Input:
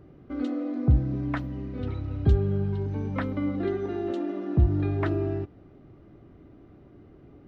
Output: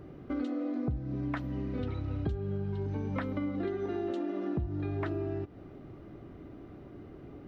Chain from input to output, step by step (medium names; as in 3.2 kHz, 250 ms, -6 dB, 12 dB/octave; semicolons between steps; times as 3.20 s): bass shelf 210 Hz -3.5 dB; compression 6:1, threshold -36 dBFS, peak gain reduction 17.5 dB; trim +5 dB